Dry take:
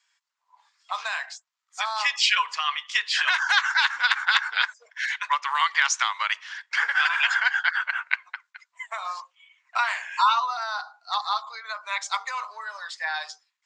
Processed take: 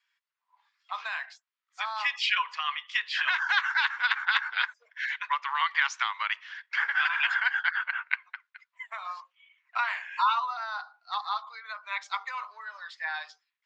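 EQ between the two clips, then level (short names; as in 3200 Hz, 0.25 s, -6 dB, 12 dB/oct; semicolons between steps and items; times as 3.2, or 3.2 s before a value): BPF 380–2700 Hz; bell 690 Hz -10 dB 2.1 oct; dynamic EQ 870 Hz, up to +4 dB, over -41 dBFS, Q 1.4; 0.0 dB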